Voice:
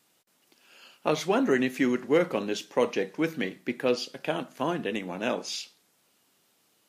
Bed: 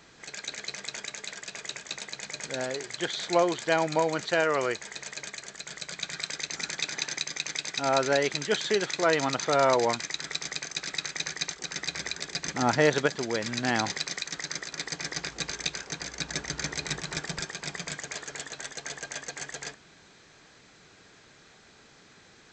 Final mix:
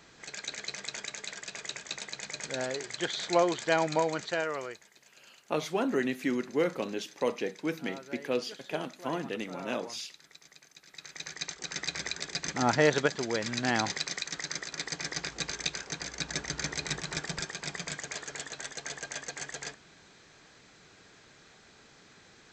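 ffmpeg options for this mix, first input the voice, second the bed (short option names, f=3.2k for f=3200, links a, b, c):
-filter_complex "[0:a]adelay=4450,volume=-5dB[a];[1:a]volume=18dB,afade=t=out:st=3.92:d=0.99:silence=0.105925,afade=t=in:st=10.88:d=0.89:silence=0.105925[b];[a][b]amix=inputs=2:normalize=0"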